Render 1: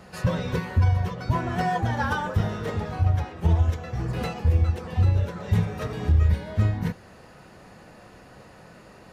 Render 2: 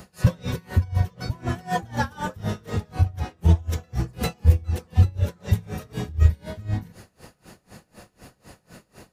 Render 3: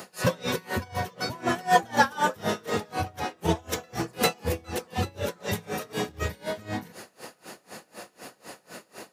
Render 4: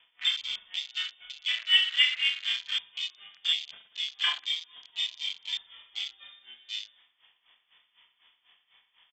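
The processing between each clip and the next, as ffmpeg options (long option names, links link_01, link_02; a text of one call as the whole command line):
ffmpeg -i in.wav -af "crystalizer=i=3.5:c=0,lowshelf=frequency=500:gain=7,aeval=exprs='val(0)*pow(10,-27*(0.5-0.5*cos(2*PI*4*n/s))/20)':channel_layout=same" out.wav
ffmpeg -i in.wav -af "highpass=320,volume=6.5dB" out.wav
ffmpeg -i in.wav -filter_complex "[0:a]asplit=2[link_01][link_02];[link_02]aecho=0:1:30|69|119.7|185.6|271.3:0.631|0.398|0.251|0.158|0.1[link_03];[link_01][link_03]amix=inputs=2:normalize=0,lowpass=frequency=3100:width_type=q:width=0.5098,lowpass=frequency=3100:width_type=q:width=0.6013,lowpass=frequency=3100:width_type=q:width=0.9,lowpass=frequency=3100:width_type=q:width=2.563,afreqshift=-3700,afwtdn=0.0398,volume=-4dB" out.wav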